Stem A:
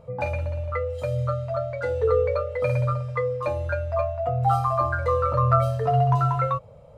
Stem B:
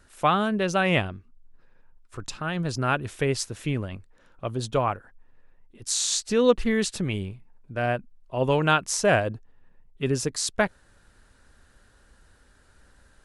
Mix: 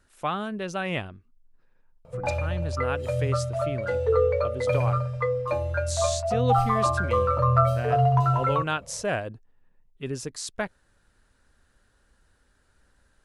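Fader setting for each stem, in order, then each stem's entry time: −0.5, −7.0 decibels; 2.05, 0.00 seconds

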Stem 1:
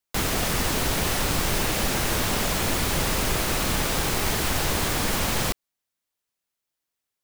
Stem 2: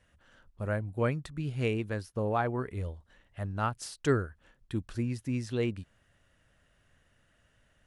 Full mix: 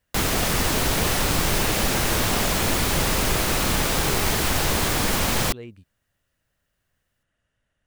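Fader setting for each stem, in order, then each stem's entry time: +2.5, −9.0 decibels; 0.00, 0.00 seconds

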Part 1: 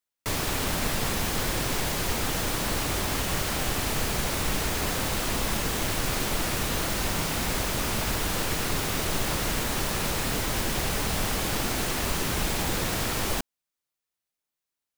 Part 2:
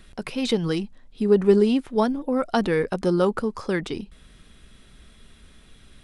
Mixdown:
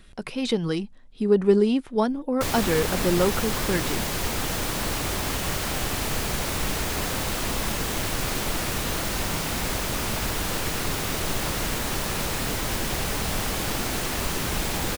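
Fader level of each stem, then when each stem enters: +0.5, −1.5 decibels; 2.15, 0.00 seconds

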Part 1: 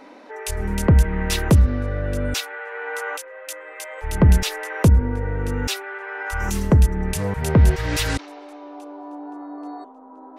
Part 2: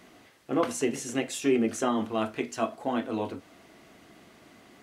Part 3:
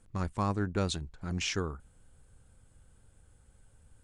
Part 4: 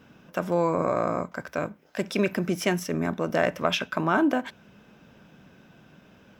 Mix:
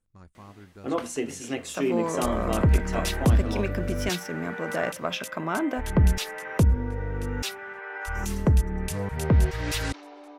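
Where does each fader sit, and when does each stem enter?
−6.0, −2.0, −17.0, −5.0 decibels; 1.75, 0.35, 0.00, 1.40 seconds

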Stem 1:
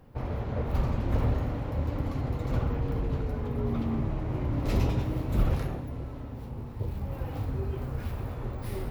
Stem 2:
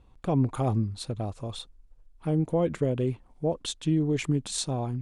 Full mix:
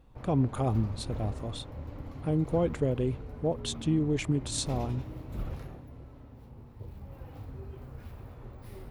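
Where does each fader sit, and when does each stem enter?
−11.0, −2.0 decibels; 0.00, 0.00 seconds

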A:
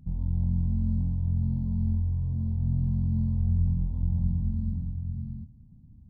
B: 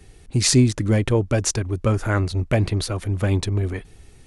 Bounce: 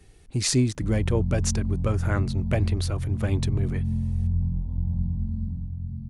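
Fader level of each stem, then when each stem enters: 0.0, −6.0 decibels; 0.75, 0.00 seconds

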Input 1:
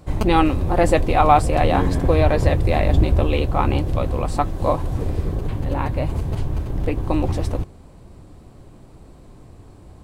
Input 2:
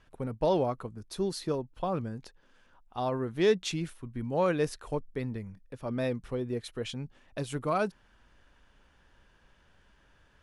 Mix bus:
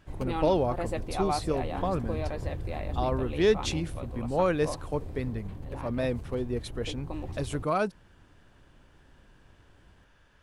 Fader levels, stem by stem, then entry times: −16.5, +1.5 decibels; 0.00, 0.00 seconds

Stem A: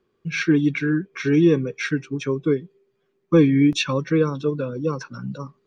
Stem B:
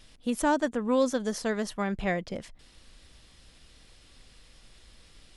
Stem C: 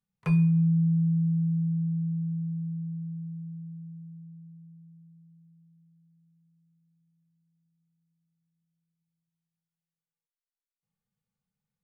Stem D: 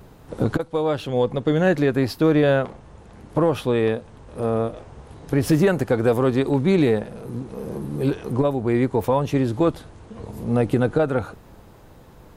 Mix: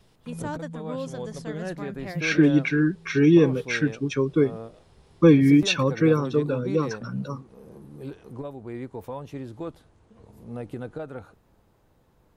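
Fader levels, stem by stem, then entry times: 0.0, −9.0, −16.5, −15.5 decibels; 1.90, 0.00, 0.00, 0.00 seconds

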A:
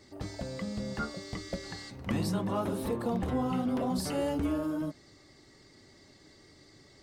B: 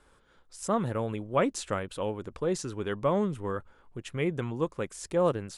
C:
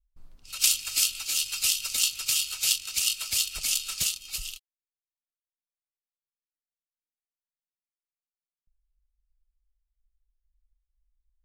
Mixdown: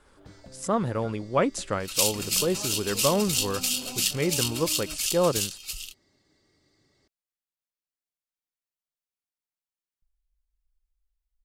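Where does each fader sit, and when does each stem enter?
−10.5, +2.5, −1.5 decibels; 0.05, 0.00, 1.35 seconds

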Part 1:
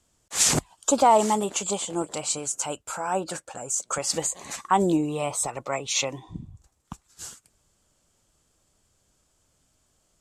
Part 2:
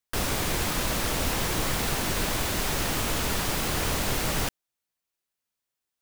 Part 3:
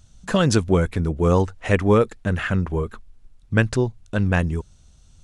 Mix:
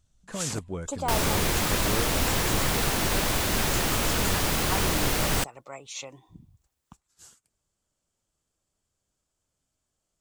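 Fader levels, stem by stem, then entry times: −12.5, +2.0, −16.5 decibels; 0.00, 0.95, 0.00 seconds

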